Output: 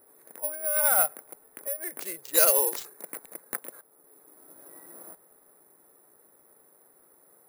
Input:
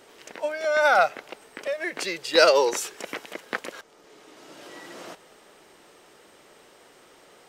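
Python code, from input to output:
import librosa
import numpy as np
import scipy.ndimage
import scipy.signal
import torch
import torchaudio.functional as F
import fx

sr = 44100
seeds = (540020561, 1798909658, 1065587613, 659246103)

y = fx.wiener(x, sr, points=15)
y = (np.kron(y[::4], np.eye(4)[0]) * 4)[:len(y)]
y = fx.peak_eq(y, sr, hz=3200.0, db=-11.0, octaves=0.34, at=(2.83, 3.63))
y = y * librosa.db_to_amplitude(-9.5)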